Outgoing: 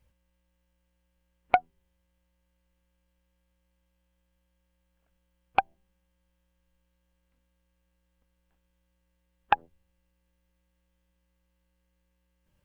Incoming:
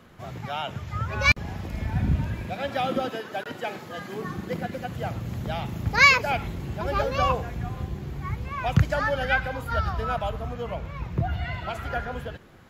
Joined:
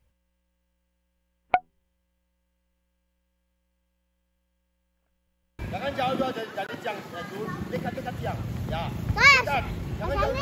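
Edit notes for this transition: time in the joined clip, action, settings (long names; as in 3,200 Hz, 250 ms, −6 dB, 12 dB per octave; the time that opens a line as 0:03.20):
outgoing
0:05.11: stutter in place 0.16 s, 3 plays
0:05.59: continue with incoming from 0:02.36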